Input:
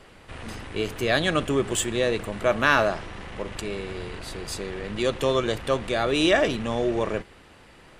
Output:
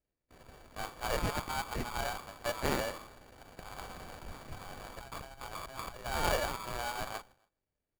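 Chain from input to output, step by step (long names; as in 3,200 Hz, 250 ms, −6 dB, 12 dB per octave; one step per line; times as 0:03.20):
voice inversion scrambler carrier 3,500 Hz
spectral tilt −3.5 dB per octave
low-pass that shuts in the quiet parts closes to 450 Hz, open at −22.5 dBFS
noise gate with hold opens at −40 dBFS
far-end echo of a speakerphone 270 ms, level −29 dB
sample-rate reduction 2,300 Hz, jitter 0%
low-shelf EQ 430 Hz −4.5 dB
0:03.77–0:06.06: compressor whose output falls as the input rises −37 dBFS, ratio −1
windowed peak hold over 5 samples
level −7 dB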